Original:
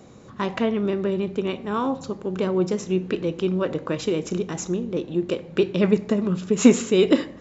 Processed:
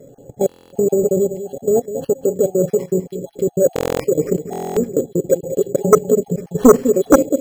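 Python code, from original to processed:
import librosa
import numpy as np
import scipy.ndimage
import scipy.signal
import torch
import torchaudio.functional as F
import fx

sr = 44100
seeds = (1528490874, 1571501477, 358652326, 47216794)

p1 = fx.spec_dropout(x, sr, seeds[0], share_pct=38)
p2 = fx.brickwall_bandstop(p1, sr, low_hz=850.0, high_hz=3900.0)
p3 = fx.high_shelf(p2, sr, hz=2800.0, db=-8.0)
p4 = p3 + 0.57 * np.pad(p3, (int(7.2 * sr / 1000.0), 0))[:len(p3)]
p5 = fx.level_steps(p4, sr, step_db=14)
p6 = fx.small_body(p5, sr, hz=(510.0, 1300.0, 2900.0), ring_ms=20, db=11)
p7 = p6 + fx.echo_single(p6, sr, ms=202, db=-12.0, dry=0)
p8 = np.repeat(p7[::6], 6)[:len(p7)]
p9 = fx.fold_sine(p8, sr, drive_db=15, ceiling_db=7.5)
p10 = fx.buffer_glitch(p9, sr, at_s=(0.47, 3.74, 4.51), block=1024, repeats=10)
y = p10 * 10.0 ** (-9.0 / 20.0)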